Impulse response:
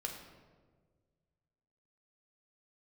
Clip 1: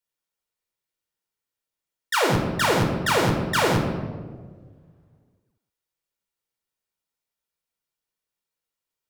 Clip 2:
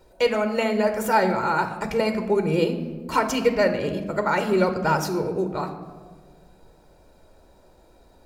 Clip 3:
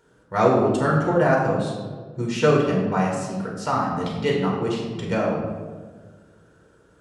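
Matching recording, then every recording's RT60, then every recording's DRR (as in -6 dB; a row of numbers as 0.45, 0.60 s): 1; 1.6, 1.6, 1.6 s; 1.5, 7.0, -3.0 dB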